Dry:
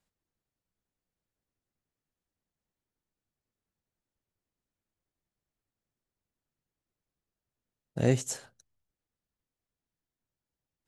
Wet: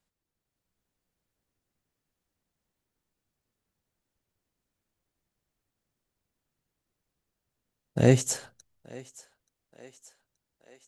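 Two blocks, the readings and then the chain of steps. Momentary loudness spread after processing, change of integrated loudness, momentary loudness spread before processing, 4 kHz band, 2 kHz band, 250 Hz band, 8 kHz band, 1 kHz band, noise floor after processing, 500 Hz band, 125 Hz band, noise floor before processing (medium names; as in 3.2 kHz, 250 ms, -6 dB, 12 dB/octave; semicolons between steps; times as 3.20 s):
14 LU, +5.0 dB, 14 LU, +5.5 dB, +5.5 dB, +5.5 dB, +5.5 dB, +5.5 dB, under -85 dBFS, +5.5 dB, +5.5 dB, under -85 dBFS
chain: level rider gain up to 6 dB; on a send: thinning echo 878 ms, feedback 62%, high-pass 360 Hz, level -19.5 dB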